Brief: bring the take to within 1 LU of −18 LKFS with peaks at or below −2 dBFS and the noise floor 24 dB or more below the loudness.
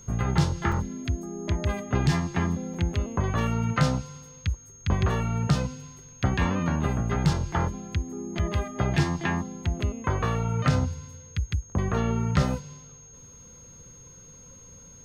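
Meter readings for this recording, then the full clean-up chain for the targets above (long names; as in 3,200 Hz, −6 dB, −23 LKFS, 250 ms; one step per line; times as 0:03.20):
number of dropouts 3; longest dropout 4.2 ms; interfering tone 6,500 Hz; level of the tone −48 dBFS; integrated loudness −27.5 LKFS; sample peak −10.0 dBFS; target loudness −18.0 LKFS
→ repair the gap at 0:00.72/0:02.74/0:08.39, 4.2 ms
notch filter 6,500 Hz, Q 30
level +9.5 dB
brickwall limiter −2 dBFS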